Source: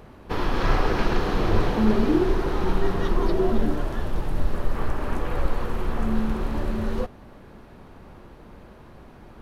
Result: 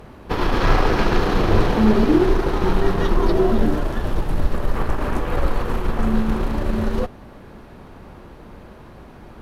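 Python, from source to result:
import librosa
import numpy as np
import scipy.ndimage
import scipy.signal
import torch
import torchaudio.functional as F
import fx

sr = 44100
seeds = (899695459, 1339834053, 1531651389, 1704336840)

y = fx.cheby_harmonics(x, sr, harmonics=(8,), levels_db=(-29,), full_scale_db=-7.0)
y = y * librosa.db_to_amplitude(5.0)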